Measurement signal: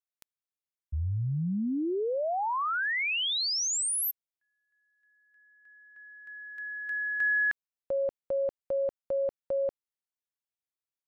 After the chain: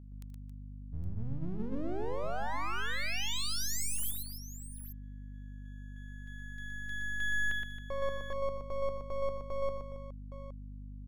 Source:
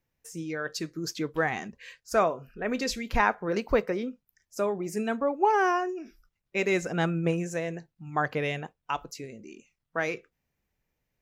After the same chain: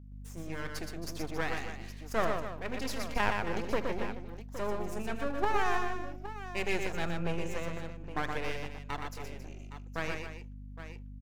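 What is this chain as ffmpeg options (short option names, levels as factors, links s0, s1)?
-filter_complex "[0:a]bandreject=f=50:t=h:w=6,bandreject=f=100:t=h:w=6,bandreject=f=150:t=h:w=6,bandreject=f=200:t=h:w=6,bandreject=f=250:t=h:w=6,aeval=exprs='max(val(0),0)':c=same,aeval=exprs='val(0)+0.00631*(sin(2*PI*50*n/s)+sin(2*PI*2*50*n/s)/2+sin(2*PI*3*50*n/s)/3+sin(2*PI*4*50*n/s)/4+sin(2*PI*5*50*n/s)/5)':c=same,asplit=2[s0][s1];[s1]aecho=0:1:78|120|272|816:0.158|0.596|0.266|0.237[s2];[s0][s2]amix=inputs=2:normalize=0,volume=0.631"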